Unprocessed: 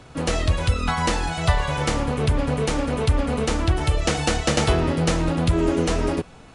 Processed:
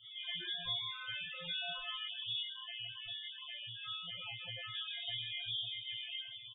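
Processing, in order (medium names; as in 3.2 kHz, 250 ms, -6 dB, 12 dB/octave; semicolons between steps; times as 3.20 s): doubling 15 ms -6 dB; frequency inversion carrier 3.5 kHz; peak limiter -11.5 dBFS, peak gain reduction 9 dB; peaking EQ 67 Hz +12.5 dB 2.4 oct; compression 12:1, threshold -25 dBFS, peak gain reduction 10 dB; chord resonator A#2 fifth, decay 0.75 s; feedback delay 156 ms, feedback 17%, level -8 dB; reverberation, pre-delay 3 ms, DRR 1 dB; loudest bins only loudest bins 16; 2.43–4.74 s: treble shelf 2.3 kHz -7 dB; trim +7 dB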